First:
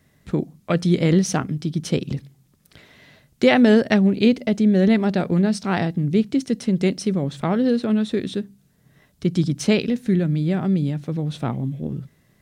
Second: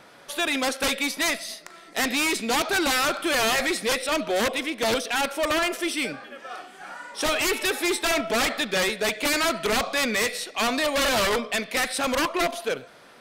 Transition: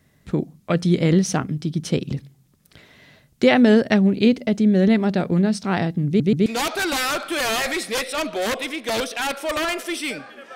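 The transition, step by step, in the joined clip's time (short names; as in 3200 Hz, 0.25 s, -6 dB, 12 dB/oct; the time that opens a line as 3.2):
first
6.07 stutter in place 0.13 s, 3 plays
6.46 switch to second from 2.4 s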